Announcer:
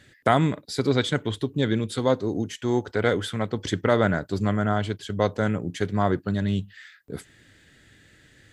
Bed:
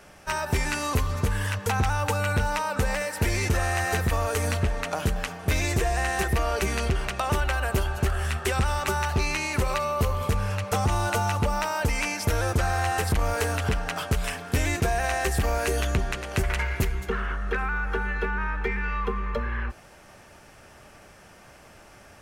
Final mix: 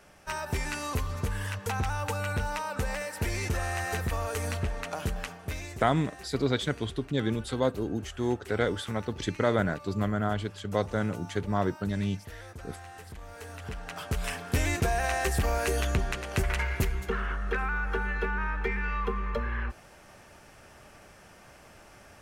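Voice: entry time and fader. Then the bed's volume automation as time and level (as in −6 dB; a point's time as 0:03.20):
5.55 s, −5.0 dB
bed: 0:05.28 −6 dB
0:05.95 −20.5 dB
0:13.26 −20.5 dB
0:14.33 −2.5 dB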